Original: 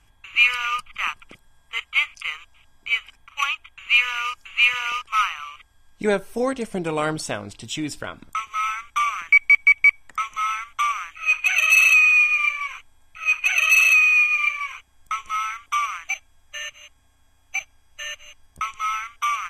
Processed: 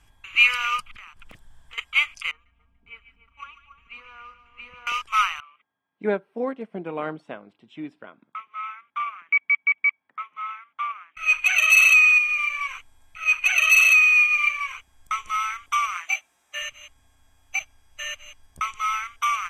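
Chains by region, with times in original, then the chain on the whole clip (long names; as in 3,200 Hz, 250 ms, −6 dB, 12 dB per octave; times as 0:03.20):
0:00.91–0:01.78: low-shelf EQ 170 Hz +8 dB + downward compressor 16 to 1, threshold −39 dBFS + highs frequency-modulated by the lows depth 0.8 ms
0:02.31–0:04.87: resonant band-pass 100 Hz, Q 0.72 + comb filter 4.3 ms, depth 77% + echo with a time of its own for lows and highs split 1,300 Hz, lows 280 ms, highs 144 ms, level −11 dB
0:05.40–0:11.17: high-pass filter 170 Hz 24 dB per octave + high-frequency loss of the air 480 metres + expander for the loud parts, over −39 dBFS
0:12.18–0:12.59: downward compressor 2.5 to 1, threshold −22 dBFS + floating-point word with a short mantissa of 6 bits
0:15.94–0:16.62: high-pass filter 290 Hz + double-tracking delay 17 ms −3 dB
whole clip: no processing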